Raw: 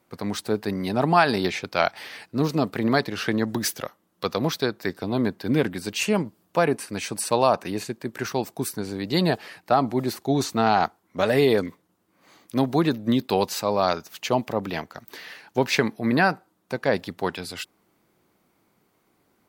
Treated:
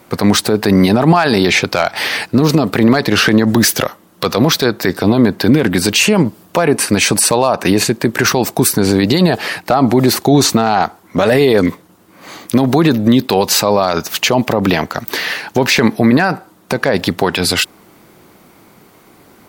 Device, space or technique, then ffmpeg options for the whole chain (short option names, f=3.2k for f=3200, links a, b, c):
loud club master: -af "acompressor=threshold=-24dB:ratio=2,asoftclip=type=hard:threshold=-13dB,alimiter=level_in=22.5dB:limit=-1dB:release=50:level=0:latency=1,volume=-1dB"